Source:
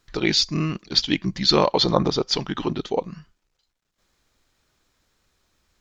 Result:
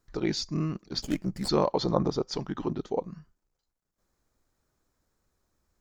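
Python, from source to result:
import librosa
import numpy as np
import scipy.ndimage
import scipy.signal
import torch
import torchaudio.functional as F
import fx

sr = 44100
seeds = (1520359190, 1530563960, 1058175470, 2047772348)

y = fx.lower_of_two(x, sr, delay_ms=0.41, at=(1.02, 1.47), fade=0.02)
y = fx.peak_eq(y, sr, hz=3100.0, db=-13.0, octaves=1.7)
y = y * 10.0 ** (-5.0 / 20.0)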